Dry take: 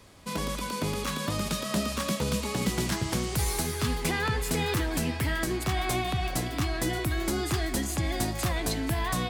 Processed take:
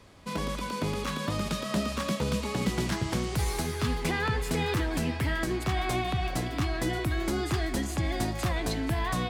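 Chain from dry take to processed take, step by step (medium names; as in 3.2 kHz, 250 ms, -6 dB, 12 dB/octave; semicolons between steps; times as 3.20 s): treble shelf 6.4 kHz -9.5 dB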